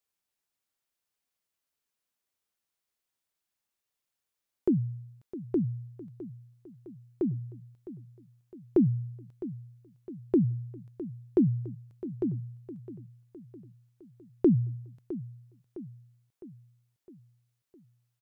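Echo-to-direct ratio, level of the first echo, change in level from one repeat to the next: -13.0 dB, -14.5 dB, -5.5 dB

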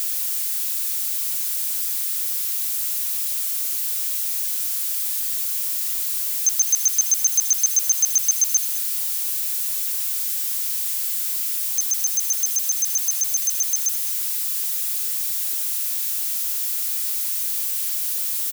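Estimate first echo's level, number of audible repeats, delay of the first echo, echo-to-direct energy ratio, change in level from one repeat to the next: -18.0 dB, 1, 0.208 s, -18.0 dB, -16.5 dB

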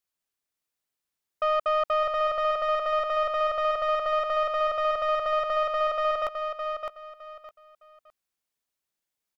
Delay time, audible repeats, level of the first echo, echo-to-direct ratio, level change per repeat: 0.611 s, 3, -6.0 dB, -5.5 dB, -12.0 dB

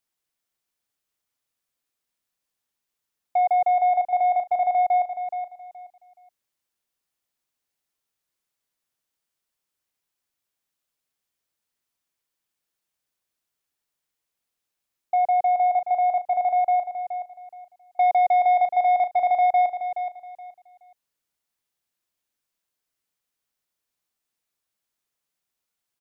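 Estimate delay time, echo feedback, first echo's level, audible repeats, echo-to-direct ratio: 0.423 s, 24%, -9.5 dB, 3, -9.0 dB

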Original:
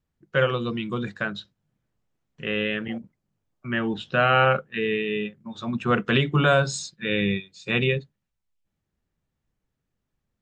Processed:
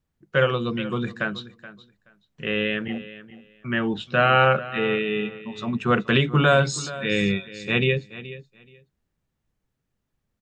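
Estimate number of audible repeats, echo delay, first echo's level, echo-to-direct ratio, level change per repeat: 2, 0.426 s, -16.0 dB, -16.0 dB, -15.0 dB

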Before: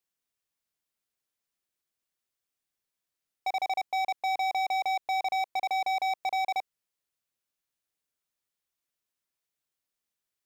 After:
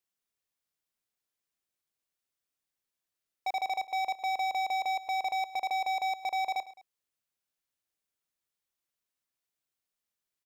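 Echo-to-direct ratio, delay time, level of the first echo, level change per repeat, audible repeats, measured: -16.0 dB, 0.106 s, -17.0 dB, -6.0 dB, 2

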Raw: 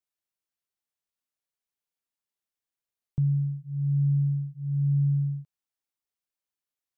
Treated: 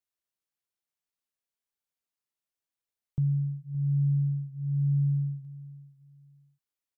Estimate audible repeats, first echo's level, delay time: 2, -18.5 dB, 0.568 s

